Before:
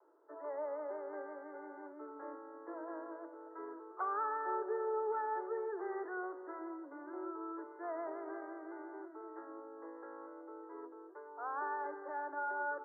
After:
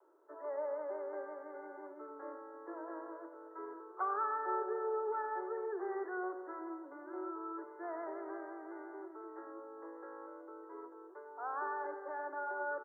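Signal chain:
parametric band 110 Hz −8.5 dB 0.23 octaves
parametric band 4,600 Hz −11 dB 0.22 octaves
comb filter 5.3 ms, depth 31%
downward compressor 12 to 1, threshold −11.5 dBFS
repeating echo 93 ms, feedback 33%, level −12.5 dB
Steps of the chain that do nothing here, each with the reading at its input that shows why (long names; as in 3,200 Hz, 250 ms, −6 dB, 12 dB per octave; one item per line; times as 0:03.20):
parametric band 110 Hz: nothing at its input below 270 Hz
parametric band 4,600 Hz: nothing at its input above 1,800 Hz
downward compressor, threshold −11.5 dBFS: peak of its input −26.0 dBFS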